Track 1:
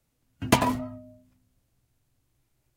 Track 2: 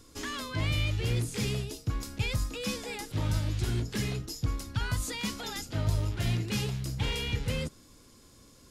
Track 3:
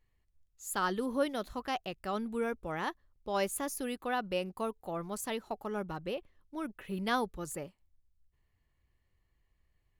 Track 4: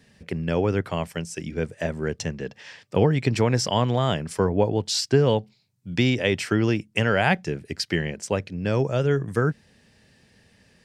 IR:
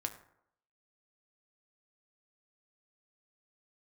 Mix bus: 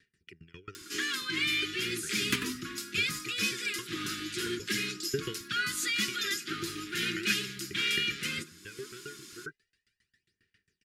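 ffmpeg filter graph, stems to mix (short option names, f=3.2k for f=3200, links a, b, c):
-filter_complex "[0:a]asoftclip=type=hard:threshold=-10dB,adelay=1800,volume=-2.5dB[a];[1:a]highpass=220,aecho=1:1:5.6:0.59,acompressor=mode=upward:threshold=-43dB:ratio=2.5,adelay=750,volume=3dB,asplit=2[b][c];[c]volume=-5dB[d];[2:a]adelay=1700,volume=-19.5dB[e];[3:a]aecho=1:1:2.1:0.6,aphaser=in_gain=1:out_gain=1:delay=2.9:decay=0.6:speed=0.38:type=sinusoidal,aeval=exprs='val(0)*pow(10,-27*if(lt(mod(7.4*n/s,1),2*abs(7.4)/1000),1-mod(7.4*n/s,1)/(2*abs(7.4)/1000),(mod(7.4*n/s,1)-2*abs(7.4)/1000)/(1-2*abs(7.4)/1000))/20)':c=same,volume=-8.5dB[f];[4:a]atrim=start_sample=2205[g];[d][g]afir=irnorm=-1:irlink=0[h];[a][b][e][f][h]amix=inputs=5:normalize=0,asuperstop=centerf=700:order=8:qfactor=0.73,bass=f=250:g=-15,treble=f=4k:g=-4"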